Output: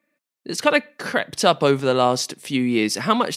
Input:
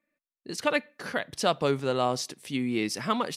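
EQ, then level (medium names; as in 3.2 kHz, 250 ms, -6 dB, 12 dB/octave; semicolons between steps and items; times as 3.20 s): high-pass 110 Hz; +8.5 dB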